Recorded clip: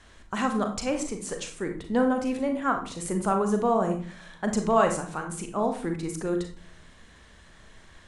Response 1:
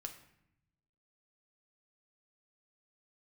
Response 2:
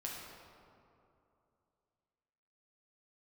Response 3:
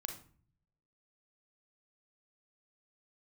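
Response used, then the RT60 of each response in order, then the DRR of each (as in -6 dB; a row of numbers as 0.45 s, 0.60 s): 3; 0.75 s, 2.8 s, 0.45 s; 4.0 dB, -4.0 dB, 4.5 dB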